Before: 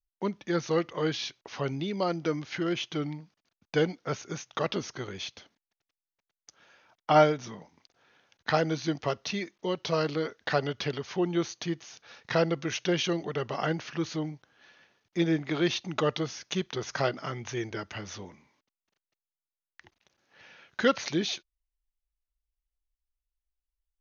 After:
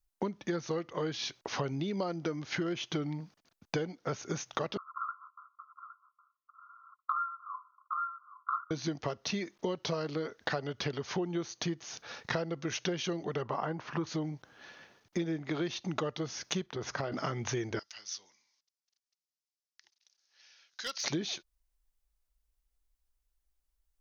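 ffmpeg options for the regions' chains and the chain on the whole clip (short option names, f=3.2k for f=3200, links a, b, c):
-filter_complex "[0:a]asettb=1/sr,asplit=3[a][b][c];[a]atrim=end=4.774[d];[b]atrim=start=4.77:end=8.71,asetpts=PTS-STARTPTS,afade=t=in:d=0.004:c=qsin,afade=t=out:st=3.936:d=0.004:c=qsin,acontrast=78,asuperpass=centerf=1200:order=20:qfactor=3,aecho=1:1:813:0.211,atrim=end_sample=173754[e];[c]atrim=start=8.706[f];[d][e]acrossfade=d=0.004:c1=hsin:c2=qsin[g];[g][f]acrossfade=d=0.004:c1=qsin:c2=hsin,asettb=1/sr,asplit=3[h][i][j];[h]atrim=end=13.424[k];[i]atrim=start=13.42:end=14.07,asetpts=PTS-STARTPTS,afade=t=in:d=0.004:c=qsin,afade=t=out:st=0.646:d=0.004:c=qsin,lowpass=f=1.9k:p=1,equalizer=f=1k:t=o:w=0.63:g=9[l];[j]atrim=start=14.066[m];[k][l]acrossfade=d=0.004:c1=hsin:c2=qsin[n];[n][m]acrossfade=d=0.004:c1=qsin:c2=hsin,asettb=1/sr,asplit=3[o][p][q];[o]atrim=end=16.664[r];[p]atrim=start=16.66:end=17.12,asetpts=PTS-STARTPTS,afade=t=in:d=0.004:c=qsin,afade=t=out:st=0.456:d=0.004:c=qsin,lowpass=f=2.8k:p=1,acompressor=threshold=-39dB:ratio=2.5:attack=3.2:release=140:knee=1:detection=peak[s];[q]atrim=start=17.116[t];[r][s]acrossfade=d=0.004:c1=hsin:c2=qsin[u];[u][t]acrossfade=d=0.004:c1=qsin:c2=hsin,asettb=1/sr,asplit=3[v][w][x];[v]atrim=end=17.794[y];[w]atrim=start=17.79:end=21.04,asetpts=PTS-STARTPTS,afade=t=in:d=0.004:c=qsin,afade=t=out:st=3.246:d=0.004:c=qsin,bandpass=f=5.2k:t=q:w=2.7,asoftclip=type=hard:threshold=-33.5dB[z];[x]atrim=start=21.036[aa];[y][z]acrossfade=d=0.004:c1=hsin:c2=qsin[ab];[ab][aa]acrossfade=d=0.004:c1=qsin:c2=hsin,equalizer=f=2.7k:w=1:g=-4,acompressor=threshold=-38dB:ratio=12,volume=7.5dB"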